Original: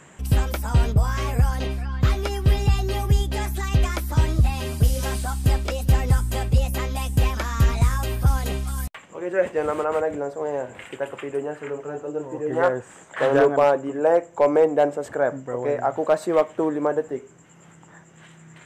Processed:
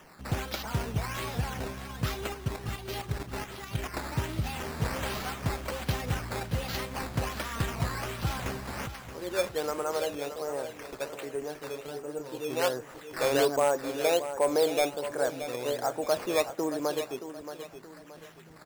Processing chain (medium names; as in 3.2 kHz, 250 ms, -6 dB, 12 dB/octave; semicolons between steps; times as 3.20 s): high-pass 110 Hz 12 dB/octave; treble shelf 4 kHz +11 dB; 2.34–3.94 s: level held to a coarse grid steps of 9 dB; decimation with a swept rate 10×, swing 100% 1.3 Hz; on a send: feedback delay 625 ms, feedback 37%, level -11 dB; on the sum: trim -8 dB